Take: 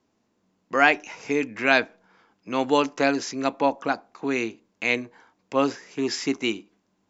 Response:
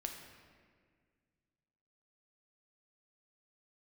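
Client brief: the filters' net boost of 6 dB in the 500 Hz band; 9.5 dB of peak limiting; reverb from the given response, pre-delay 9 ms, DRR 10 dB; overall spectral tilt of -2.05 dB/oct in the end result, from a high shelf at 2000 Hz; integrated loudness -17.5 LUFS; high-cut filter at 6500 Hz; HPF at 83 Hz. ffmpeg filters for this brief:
-filter_complex "[0:a]highpass=83,lowpass=6.5k,equalizer=f=500:t=o:g=7,highshelf=f=2k:g=4.5,alimiter=limit=-10.5dB:level=0:latency=1,asplit=2[a][b];[1:a]atrim=start_sample=2205,adelay=9[c];[b][c]afir=irnorm=-1:irlink=0,volume=-9dB[d];[a][d]amix=inputs=2:normalize=0,volume=6.5dB"

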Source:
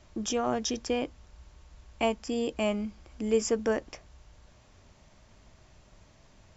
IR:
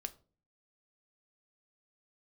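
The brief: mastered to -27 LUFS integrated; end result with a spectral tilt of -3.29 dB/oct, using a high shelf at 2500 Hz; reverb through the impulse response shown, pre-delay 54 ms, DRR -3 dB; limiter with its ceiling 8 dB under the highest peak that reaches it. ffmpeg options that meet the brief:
-filter_complex "[0:a]highshelf=f=2.5k:g=4.5,alimiter=limit=-21.5dB:level=0:latency=1,asplit=2[a][b];[1:a]atrim=start_sample=2205,adelay=54[c];[b][c]afir=irnorm=-1:irlink=0,volume=5dB[d];[a][d]amix=inputs=2:normalize=0,volume=2dB"

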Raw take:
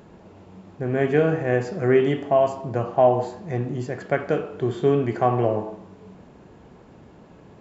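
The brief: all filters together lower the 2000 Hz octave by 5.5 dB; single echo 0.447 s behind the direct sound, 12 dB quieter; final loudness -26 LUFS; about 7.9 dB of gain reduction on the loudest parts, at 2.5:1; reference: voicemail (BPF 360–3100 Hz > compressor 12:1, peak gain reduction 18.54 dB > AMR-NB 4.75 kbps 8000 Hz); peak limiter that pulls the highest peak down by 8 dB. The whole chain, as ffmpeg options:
-af "equalizer=f=2k:t=o:g=-6.5,acompressor=threshold=-25dB:ratio=2.5,alimiter=limit=-21dB:level=0:latency=1,highpass=360,lowpass=3.1k,aecho=1:1:447:0.251,acompressor=threshold=-44dB:ratio=12,volume=24.5dB" -ar 8000 -c:a libopencore_amrnb -b:a 4750

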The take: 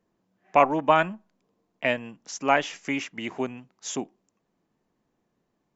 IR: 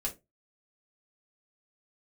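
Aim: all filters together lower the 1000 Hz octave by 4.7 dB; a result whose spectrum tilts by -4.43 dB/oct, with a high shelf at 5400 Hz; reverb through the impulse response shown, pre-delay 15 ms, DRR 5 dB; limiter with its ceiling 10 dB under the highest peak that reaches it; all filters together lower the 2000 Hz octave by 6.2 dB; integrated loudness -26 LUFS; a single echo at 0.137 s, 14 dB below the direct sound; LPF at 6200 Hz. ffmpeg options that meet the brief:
-filter_complex "[0:a]lowpass=6.2k,equalizer=f=1k:t=o:g=-5,equalizer=f=2k:t=o:g=-7,highshelf=f=5.4k:g=3,alimiter=limit=-18dB:level=0:latency=1,aecho=1:1:137:0.2,asplit=2[a][b];[1:a]atrim=start_sample=2205,adelay=15[c];[b][c]afir=irnorm=-1:irlink=0,volume=-7dB[d];[a][d]amix=inputs=2:normalize=0,volume=5.5dB"

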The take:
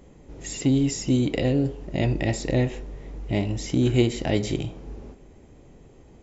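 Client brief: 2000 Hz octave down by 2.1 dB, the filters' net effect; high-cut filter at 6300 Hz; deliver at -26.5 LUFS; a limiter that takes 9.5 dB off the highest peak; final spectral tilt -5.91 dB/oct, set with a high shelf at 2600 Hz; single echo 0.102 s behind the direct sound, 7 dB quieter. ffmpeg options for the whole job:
-af "lowpass=6.3k,equalizer=f=2k:t=o:g=-4,highshelf=f=2.6k:g=3.5,alimiter=limit=-17.5dB:level=0:latency=1,aecho=1:1:102:0.447,volume=1dB"

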